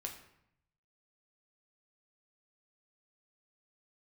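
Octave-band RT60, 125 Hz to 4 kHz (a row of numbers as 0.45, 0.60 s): 1.2, 0.90, 0.75, 0.75, 0.70, 0.55 s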